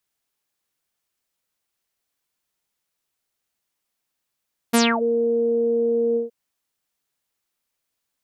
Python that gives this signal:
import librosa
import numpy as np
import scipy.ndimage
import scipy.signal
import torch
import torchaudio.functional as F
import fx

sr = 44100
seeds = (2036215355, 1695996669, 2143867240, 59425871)

y = fx.sub_voice(sr, note=58, wave='saw', cutoff_hz=480.0, q=8.4, env_oct=5.0, env_s=0.28, attack_ms=15.0, decay_s=0.25, sustain_db=-14.5, release_s=0.14, note_s=1.43, slope=24)